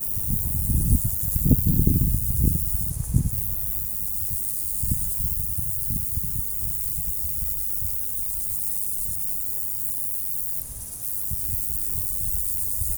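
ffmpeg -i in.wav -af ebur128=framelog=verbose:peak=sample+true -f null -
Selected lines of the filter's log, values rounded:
Integrated loudness:
  I:         -23.0 LUFS
  Threshold: -33.0 LUFS
Loudness range:
  LRA:         2.9 LU
  Threshold: -43.3 LUFS
  LRA low:   -24.3 LUFS
  LRA high:  -21.5 LUFS
Sample peak:
  Peak:       -2.7 dBFS
True peak:
  Peak:       -2.6 dBFS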